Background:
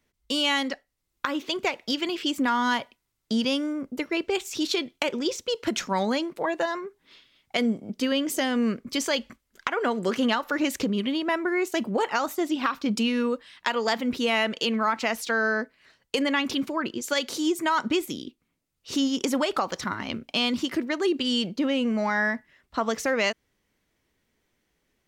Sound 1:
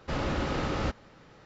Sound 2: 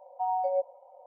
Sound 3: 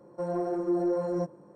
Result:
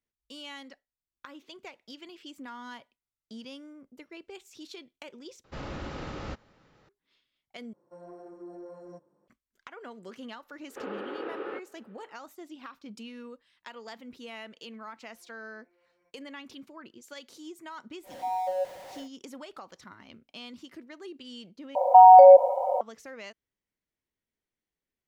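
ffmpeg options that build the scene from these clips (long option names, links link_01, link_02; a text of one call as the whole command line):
ffmpeg -i bed.wav -i cue0.wav -i cue1.wav -i cue2.wav -filter_complex "[1:a]asplit=2[link_01][link_02];[3:a]asplit=2[link_03][link_04];[2:a]asplit=2[link_05][link_06];[0:a]volume=-19dB[link_07];[link_03]lowshelf=frequency=300:gain=-6[link_08];[link_02]highpass=frequency=340:width=0.5412,highpass=frequency=340:width=1.3066,equalizer=frequency=430:width_type=q:width=4:gain=8,equalizer=frequency=650:width_type=q:width=4:gain=-8,equalizer=frequency=990:width_type=q:width=4:gain=-6,equalizer=frequency=2100:width_type=q:width=4:gain=-9,lowpass=frequency=2500:width=0.5412,lowpass=frequency=2500:width=1.3066[link_09];[link_04]bandpass=frequency=2300:width_type=q:width=19:csg=0[link_10];[link_05]aeval=exprs='val(0)+0.5*0.0112*sgn(val(0))':channel_layout=same[link_11];[link_06]alimiter=level_in=30dB:limit=-1dB:release=50:level=0:latency=1[link_12];[link_07]asplit=4[link_13][link_14][link_15][link_16];[link_13]atrim=end=5.444[link_17];[link_01]atrim=end=1.45,asetpts=PTS-STARTPTS,volume=-8dB[link_18];[link_14]atrim=start=6.886:end=7.734[link_19];[link_08]atrim=end=1.55,asetpts=PTS-STARTPTS,volume=-15dB[link_20];[link_15]atrim=start=9.276:end=21.754[link_21];[link_12]atrim=end=1.06,asetpts=PTS-STARTPTS,volume=-4dB[link_22];[link_16]atrim=start=22.806[link_23];[link_09]atrim=end=1.45,asetpts=PTS-STARTPTS,volume=-3.5dB,afade=type=in:duration=0.004:curve=hsin,afade=type=out:start_time=1.446:duration=0.004:curve=hsin,adelay=10680[link_24];[link_10]atrim=end=1.55,asetpts=PTS-STARTPTS,volume=-4.5dB,afade=type=in:duration=0.004:curve=hsin,afade=type=out:start_time=1.546:duration=0.004:curve=hsin,adelay=14850[link_25];[link_11]atrim=end=1.06,asetpts=PTS-STARTPTS,volume=-2.5dB,afade=type=in:duration=0.1,afade=type=out:start_time=0.96:duration=0.1,adelay=18030[link_26];[link_17][link_18]acrossfade=duration=0.004:curve1=hsin:curve2=hsin[link_27];[link_27][link_19]acrossfade=duration=0.004:curve1=hsin:curve2=hsin[link_28];[link_28][link_20]acrossfade=duration=0.004:curve1=hsin:curve2=hsin[link_29];[link_29][link_21]acrossfade=duration=0.004:curve1=hsin:curve2=hsin[link_30];[link_30][link_22]acrossfade=duration=0.004:curve1=hsin:curve2=hsin[link_31];[link_31][link_23]acrossfade=duration=0.004:curve1=hsin:curve2=hsin[link_32];[link_32][link_24][link_25][link_26]amix=inputs=4:normalize=0" out.wav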